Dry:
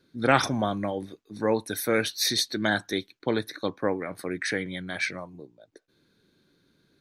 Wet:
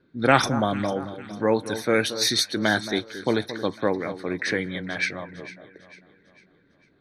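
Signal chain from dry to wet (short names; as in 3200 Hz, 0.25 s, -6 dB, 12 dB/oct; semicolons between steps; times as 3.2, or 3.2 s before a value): low-pass opened by the level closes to 2100 Hz, open at -20.5 dBFS; echo with dull and thin repeats by turns 0.225 s, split 1400 Hz, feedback 65%, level -12 dB; gain +3 dB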